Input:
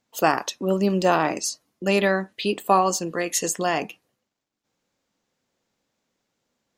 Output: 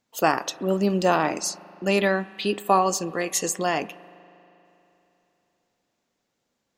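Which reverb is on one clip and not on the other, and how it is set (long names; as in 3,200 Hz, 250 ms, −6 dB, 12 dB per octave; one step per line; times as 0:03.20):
spring reverb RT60 3.2 s, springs 39 ms, chirp 30 ms, DRR 18.5 dB
level −1 dB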